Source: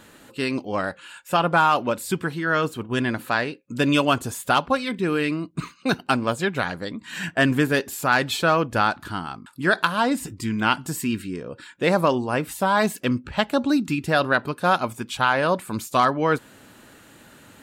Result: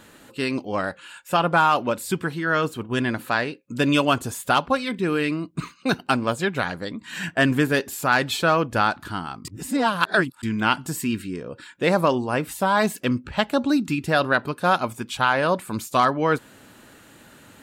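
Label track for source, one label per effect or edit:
9.450000	10.430000	reverse

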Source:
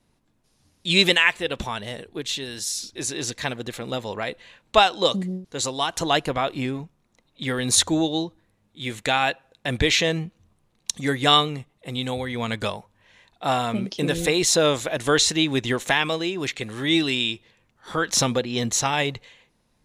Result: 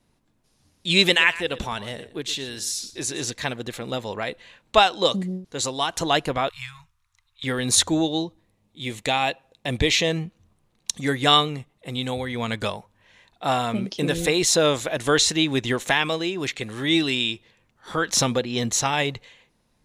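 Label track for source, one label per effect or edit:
1.030000	3.270000	single-tap delay 118 ms −16 dB
6.490000	7.440000	elliptic band-stop filter 100–1,100 Hz, stop band 50 dB
8.220000	10.110000	parametric band 1,500 Hz −9 dB 0.41 octaves

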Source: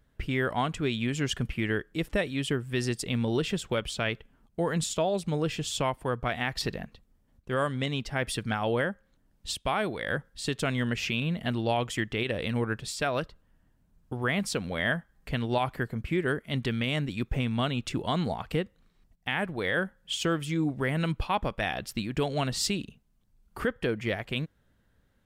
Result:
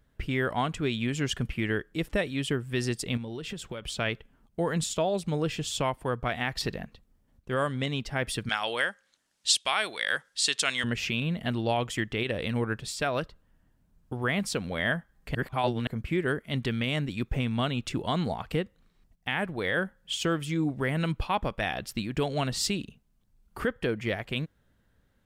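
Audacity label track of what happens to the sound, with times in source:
3.170000	3.880000	downward compressor, threshold −33 dBFS
8.490000	10.840000	meter weighting curve ITU-R 468
15.350000	15.870000	reverse

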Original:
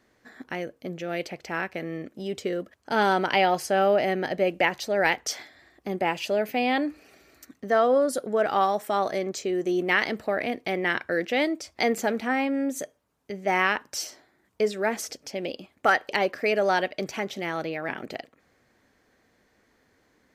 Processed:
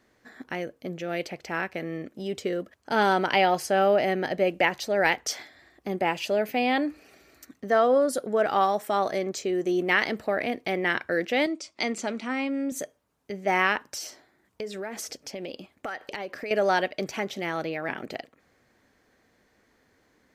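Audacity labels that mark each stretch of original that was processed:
11.460000	12.720000	loudspeaker in its box 220–8,700 Hz, peaks and dips at 460 Hz −8 dB, 760 Hz −9 dB, 1,700 Hz −8 dB
13.890000	16.510000	downward compressor, threshold −31 dBFS

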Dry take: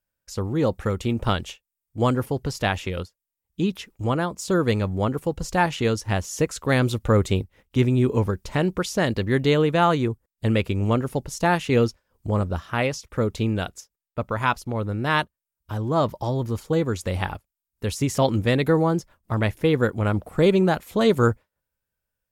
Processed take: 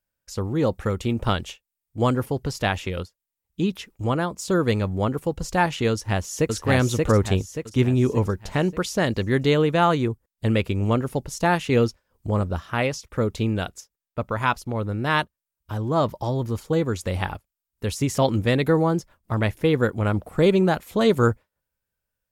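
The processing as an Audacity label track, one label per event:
5.910000	6.530000	delay throw 580 ms, feedback 45%, level −1.5 dB

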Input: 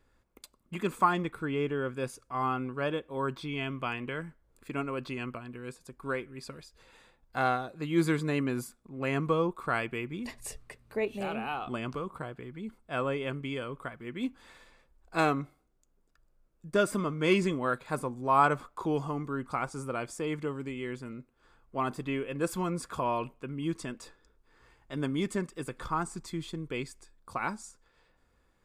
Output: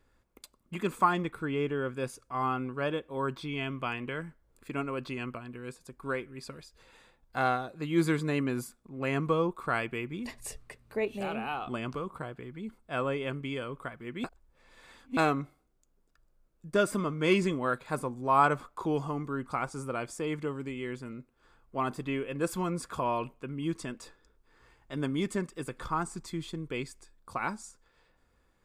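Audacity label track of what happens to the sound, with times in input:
14.240000	15.170000	reverse

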